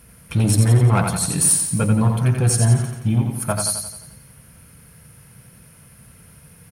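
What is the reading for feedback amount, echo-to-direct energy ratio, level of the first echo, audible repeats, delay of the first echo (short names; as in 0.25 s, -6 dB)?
52%, -3.5 dB, -5.0 dB, 6, 87 ms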